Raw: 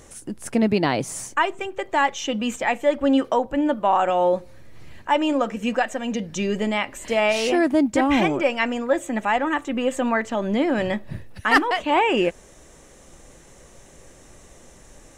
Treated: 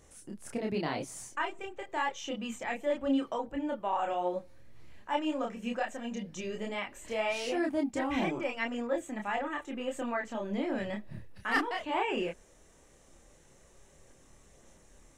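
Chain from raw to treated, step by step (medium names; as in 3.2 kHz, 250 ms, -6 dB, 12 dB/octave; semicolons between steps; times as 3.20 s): chorus voices 2, 0.85 Hz, delay 28 ms, depth 2.7 ms; trim -9 dB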